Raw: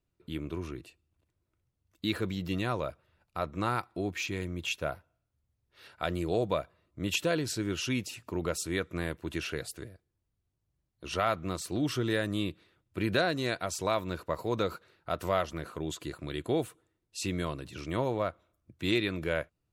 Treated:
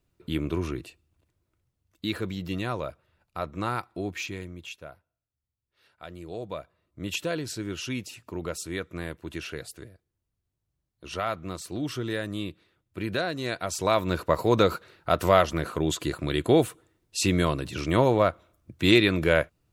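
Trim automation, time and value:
0.71 s +8 dB
2.08 s +1 dB
4.20 s +1 dB
4.88 s -10.5 dB
6.08 s -10.5 dB
7.00 s -1 dB
13.33 s -1 dB
14.20 s +9.5 dB

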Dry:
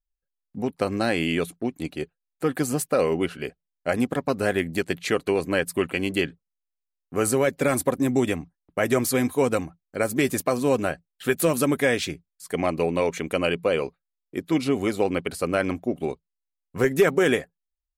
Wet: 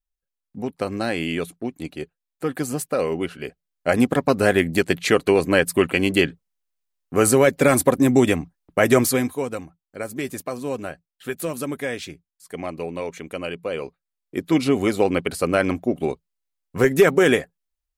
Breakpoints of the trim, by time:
3.38 s -1 dB
4.01 s +6 dB
9.01 s +6 dB
9.47 s -6 dB
13.61 s -6 dB
14.44 s +4 dB

